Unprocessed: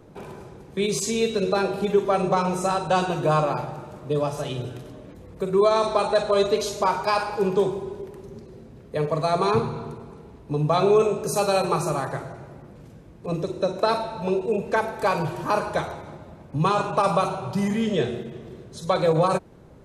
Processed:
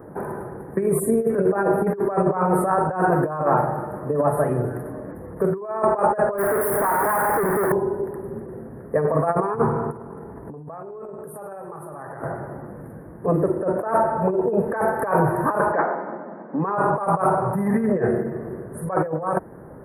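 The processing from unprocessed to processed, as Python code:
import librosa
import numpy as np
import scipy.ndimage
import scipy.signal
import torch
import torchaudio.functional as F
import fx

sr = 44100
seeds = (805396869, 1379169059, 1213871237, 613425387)

y = fx.spec_box(x, sr, start_s=0.99, length_s=0.31, low_hz=750.0, high_hz=5800.0, gain_db=-9)
y = fx.clip_1bit(y, sr, at=(6.38, 7.72))
y = fx.env_flatten(y, sr, amount_pct=100, at=(9.9, 12.22), fade=0.02)
y = fx.brickwall_bandpass(y, sr, low_hz=170.0, high_hz=4900.0, at=(15.71, 16.76), fade=0.02)
y = fx.over_compress(y, sr, threshold_db=-25.0, ratio=-0.5)
y = scipy.signal.sosfilt(scipy.signal.cheby1(4, 1.0, [1800.0, 9700.0], 'bandstop', fs=sr, output='sos'), y)
y = fx.low_shelf(y, sr, hz=91.0, db=-11.5)
y = y * librosa.db_to_amplitude(5.5)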